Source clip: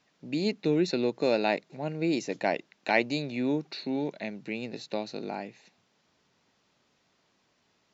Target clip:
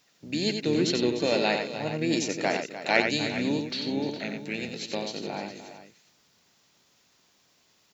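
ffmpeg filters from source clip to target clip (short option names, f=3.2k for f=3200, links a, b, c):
-filter_complex "[0:a]asplit=2[a][b];[b]asetrate=33038,aresample=44100,atempo=1.33484,volume=-8dB[c];[a][c]amix=inputs=2:normalize=0,aemphasis=mode=production:type=75fm,aecho=1:1:90|300|412:0.501|0.237|0.224"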